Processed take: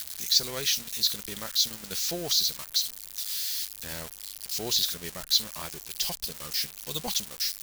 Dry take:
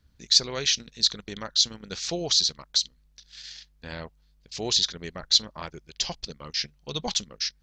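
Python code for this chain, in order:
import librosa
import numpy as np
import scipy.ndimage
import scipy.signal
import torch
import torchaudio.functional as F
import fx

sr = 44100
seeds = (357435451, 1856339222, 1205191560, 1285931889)

y = x + 0.5 * 10.0 ** (-20.5 / 20.0) * np.diff(np.sign(x), prepend=np.sign(x[:1]))
y = y * 10.0 ** (-4.0 / 20.0)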